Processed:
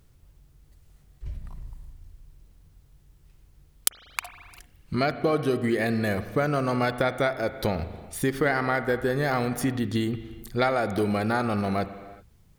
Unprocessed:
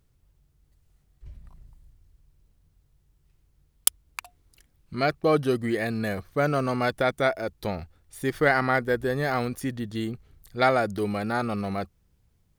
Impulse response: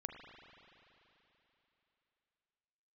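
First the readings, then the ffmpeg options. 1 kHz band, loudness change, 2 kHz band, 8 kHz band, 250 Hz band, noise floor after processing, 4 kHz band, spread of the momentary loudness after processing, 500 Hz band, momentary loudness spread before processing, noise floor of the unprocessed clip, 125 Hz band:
-1.0 dB, -0.5 dB, -1.0 dB, -2.0 dB, +2.0 dB, -58 dBFS, +0.5 dB, 16 LU, -0.5 dB, 15 LU, -67 dBFS, +2.0 dB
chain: -filter_complex "[0:a]acompressor=threshold=-31dB:ratio=4,asplit=2[a][b];[1:a]atrim=start_sample=2205,afade=t=out:st=0.45:d=0.01,atrim=end_sample=20286[c];[b][c]afir=irnorm=-1:irlink=0,volume=1.5dB[d];[a][d]amix=inputs=2:normalize=0,volume=3.5dB"

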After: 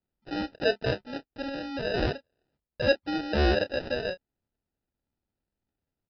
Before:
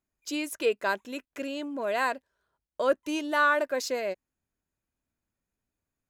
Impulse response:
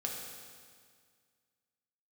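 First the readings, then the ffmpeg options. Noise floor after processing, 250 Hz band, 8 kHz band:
under -85 dBFS, +2.5 dB, under -15 dB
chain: -filter_complex "[0:a]aresample=11025,acrusher=samples=10:mix=1:aa=0.000001,aresample=44100,asplit=2[a][b];[b]adelay=29,volume=-13.5dB[c];[a][c]amix=inputs=2:normalize=0"

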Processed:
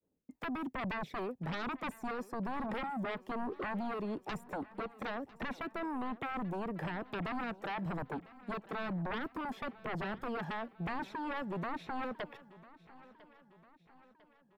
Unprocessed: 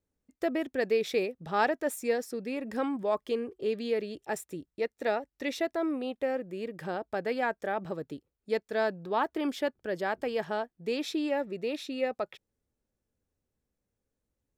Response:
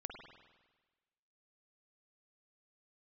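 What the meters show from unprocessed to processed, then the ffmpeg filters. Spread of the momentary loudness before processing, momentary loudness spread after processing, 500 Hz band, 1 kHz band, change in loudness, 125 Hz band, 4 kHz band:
8 LU, 6 LU, -12.5 dB, -4.0 dB, -7.5 dB, +4.5 dB, -8.0 dB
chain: -filter_complex "[0:a]equalizer=f=1.4k:w=2:g=-6,acrossover=split=2500[a][b];[b]acompressor=threshold=-58dB:ratio=4:attack=1:release=60[c];[a][c]amix=inputs=2:normalize=0,aphaser=in_gain=1:out_gain=1:delay=1.2:decay=0.48:speed=1.1:type=sinusoidal,highshelf=f=11k:g=7.5,acrossover=split=210|3000[d][e][f];[e]acompressor=threshold=-40dB:ratio=6[g];[d][g][f]amix=inputs=3:normalize=0,acrossover=split=140|1600[h][i][j];[i]aeval=exprs='0.0398*sin(PI/2*4.47*val(0)/0.0398)':c=same[k];[h][k][j]amix=inputs=3:normalize=0,agate=range=-33dB:threshold=-59dB:ratio=3:detection=peak,asplit=2[l][m];[m]aecho=0:1:1000|2000|3000|4000:0.106|0.0551|0.0286|0.0149[n];[l][n]amix=inputs=2:normalize=0,volume=-6.5dB"

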